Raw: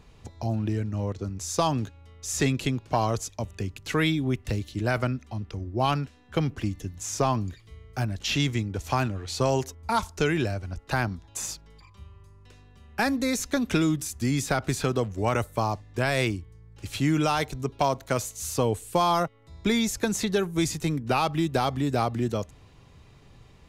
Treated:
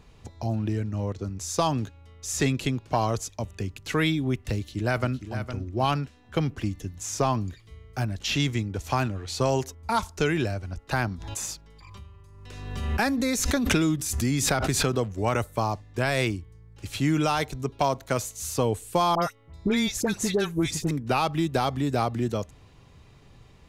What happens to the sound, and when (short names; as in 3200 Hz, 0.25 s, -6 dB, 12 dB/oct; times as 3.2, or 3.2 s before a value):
4.55–5.38 echo throw 0.46 s, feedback 10%, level -10 dB
11.05–14.97 backwards sustainer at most 39 dB/s
19.15–20.91 dispersion highs, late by 72 ms, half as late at 1400 Hz